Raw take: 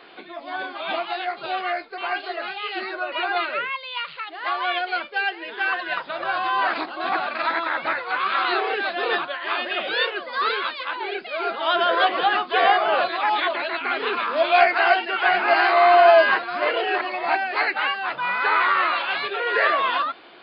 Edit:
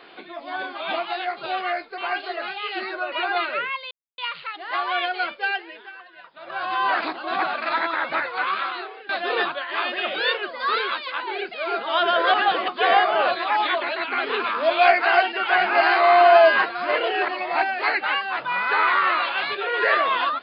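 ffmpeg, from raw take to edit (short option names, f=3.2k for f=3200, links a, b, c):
-filter_complex "[0:a]asplit=7[a][b][c][d][e][f][g];[a]atrim=end=3.91,asetpts=PTS-STARTPTS,afade=t=out:st=3.906:d=0.004:c=hsin,apad=pad_dur=0.27[h];[b]atrim=start=3.91:end=5.65,asetpts=PTS-STARTPTS,afade=t=in:d=0.004:c=hsin,afade=t=out:st=1.27:d=0.47:silence=0.112202[i];[c]atrim=start=5.65:end=6.06,asetpts=PTS-STARTPTS,volume=-19dB[j];[d]atrim=start=6.06:end=8.82,asetpts=PTS-STARTPTS,afade=t=in:d=0.47:silence=0.112202,afade=t=out:st=2.15:d=0.61:c=qua:silence=0.112202[k];[e]atrim=start=8.82:end=12.072,asetpts=PTS-STARTPTS,afade=t=in:d=0.004:c=hsin:silence=0.112202[l];[f]atrim=start=12.068:end=12.412,asetpts=PTS-STARTPTS,areverse[m];[g]atrim=start=12.408[n];[h][i][j][k][l]concat=n=5:v=0:a=1[o];[o][m]acrossfade=d=0.004:c1=hsin:c2=hsin[p];[p][n]acrossfade=d=0.004:c1=hsin:c2=hsin"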